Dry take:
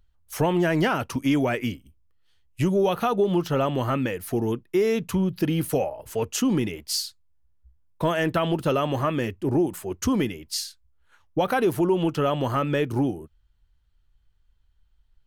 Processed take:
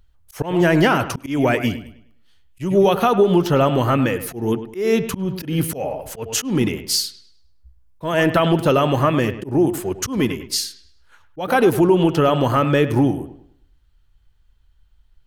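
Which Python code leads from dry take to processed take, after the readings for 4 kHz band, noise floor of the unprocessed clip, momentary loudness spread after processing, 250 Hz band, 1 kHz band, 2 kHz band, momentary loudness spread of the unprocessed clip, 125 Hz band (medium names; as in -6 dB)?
+6.5 dB, -64 dBFS, 11 LU, +5.0 dB, +6.5 dB, +7.0 dB, 7 LU, +6.0 dB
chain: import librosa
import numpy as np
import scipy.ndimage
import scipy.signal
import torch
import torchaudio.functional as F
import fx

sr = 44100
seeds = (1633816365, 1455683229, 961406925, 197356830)

y = fx.echo_wet_lowpass(x, sr, ms=103, feedback_pct=34, hz=3300.0, wet_db=-12.5)
y = fx.auto_swell(y, sr, attack_ms=194.0)
y = F.gain(torch.from_numpy(y), 7.0).numpy()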